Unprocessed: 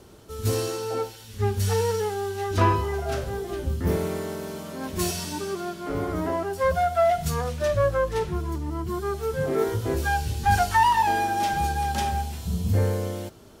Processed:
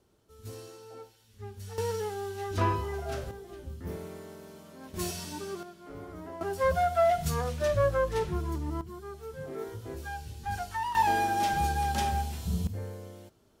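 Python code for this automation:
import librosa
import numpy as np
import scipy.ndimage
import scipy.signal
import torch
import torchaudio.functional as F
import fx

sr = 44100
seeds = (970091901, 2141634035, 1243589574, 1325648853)

y = fx.gain(x, sr, db=fx.steps((0.0, -18.5), (1.78, -7.0), (3.31, -14.0), (4.94, -7.5), (5.63, -15.5), (6.41, -3.5), (8.81, -14.0), (10.95, -3.0), (12.67, -15.5)))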